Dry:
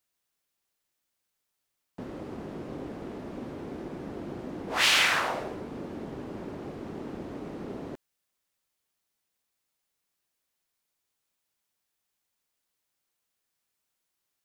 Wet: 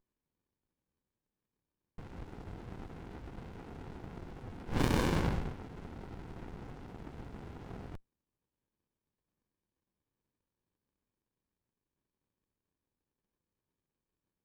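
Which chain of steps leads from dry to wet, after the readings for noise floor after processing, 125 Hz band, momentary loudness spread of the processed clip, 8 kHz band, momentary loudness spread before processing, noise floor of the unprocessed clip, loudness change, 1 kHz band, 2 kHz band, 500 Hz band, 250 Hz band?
below −85 dBFS, +5.0 dB, 17 LU, −15.0 dB, 18 LU, −82 dBFS, −9.0 dB, −8.5 dB, −16.0 dB, −5.5 dB, −2.5 dB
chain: four-pole ladder high-pass 530 Hz, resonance 55%
windowed peak hold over 65 samples
level +8.5 dB

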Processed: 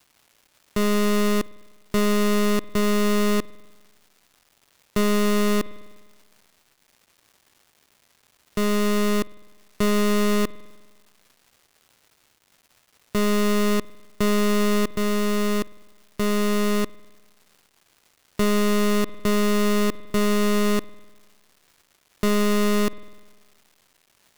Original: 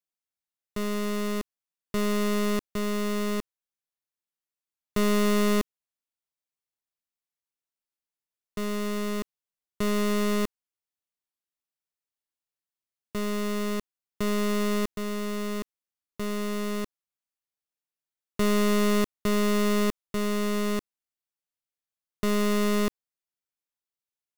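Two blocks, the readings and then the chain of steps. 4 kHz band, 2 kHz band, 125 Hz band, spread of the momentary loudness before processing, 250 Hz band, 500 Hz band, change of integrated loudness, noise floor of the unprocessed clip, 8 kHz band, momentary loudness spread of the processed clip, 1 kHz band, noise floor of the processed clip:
+5.5 dB, +5.5 dB, +5.0 dB, 11 LU, +5.0 dB, +5.5 dB, +5.0 dB, below −85 dBFS, +5.5 dB, 7 LU, +5.5 dB, −65 dBFS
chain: surface crackle 480 per second −54 dBFS
spring reverb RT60 1.4 s, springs 50 ms, chirp 40 ms, DRR 19.5 dB
brickwall limiter −26.5 dBFS, peak gain reduction 6 dB
level +8.5 dB

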